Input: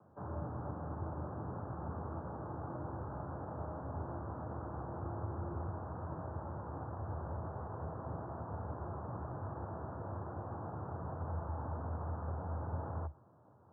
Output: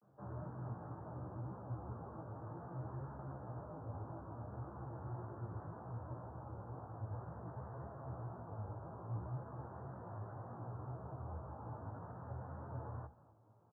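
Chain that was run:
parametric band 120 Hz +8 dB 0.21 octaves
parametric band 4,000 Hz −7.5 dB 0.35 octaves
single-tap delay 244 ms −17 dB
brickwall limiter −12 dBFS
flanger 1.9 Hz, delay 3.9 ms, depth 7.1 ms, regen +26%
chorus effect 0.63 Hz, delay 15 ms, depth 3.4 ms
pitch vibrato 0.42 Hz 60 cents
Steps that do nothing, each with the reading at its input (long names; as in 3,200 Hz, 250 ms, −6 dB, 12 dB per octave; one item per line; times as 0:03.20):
parametric band 4,000 Hz: nothing at its input above 1,400 Hz
brickwall limiter −12 dBFS: peak of its input −27.0 dBFS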